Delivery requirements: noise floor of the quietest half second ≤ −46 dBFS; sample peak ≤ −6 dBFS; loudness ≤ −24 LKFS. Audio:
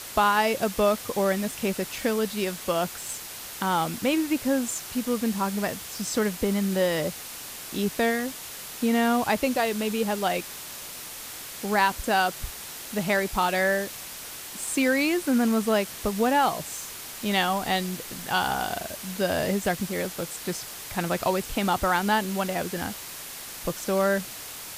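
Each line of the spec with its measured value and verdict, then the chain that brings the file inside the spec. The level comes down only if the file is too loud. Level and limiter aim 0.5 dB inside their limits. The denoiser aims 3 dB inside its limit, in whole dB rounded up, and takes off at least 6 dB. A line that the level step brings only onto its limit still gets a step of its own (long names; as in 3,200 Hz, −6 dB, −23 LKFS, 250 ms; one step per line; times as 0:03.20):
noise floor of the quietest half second −39 dBFS: out of spec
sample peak −8.5 dBFS: in spec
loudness −26.5 LKFS: in spec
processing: broadband denoise 10 dB, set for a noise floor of −39 dBFS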